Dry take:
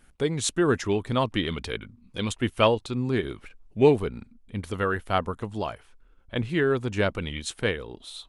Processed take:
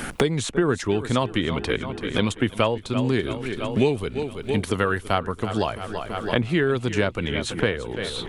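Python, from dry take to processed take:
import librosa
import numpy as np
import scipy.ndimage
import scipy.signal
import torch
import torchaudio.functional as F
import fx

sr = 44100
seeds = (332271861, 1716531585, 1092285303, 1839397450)

p1 = x + fx.echo_feedback(x, sr, ms=334, feedback_pct=54, wet_db=-16.0, dry=0)
p2 = fx.band_squash(p1, sr, depth_pct=100)
y = F.gain(torch.from_numpy(p2), 2.0).numpy()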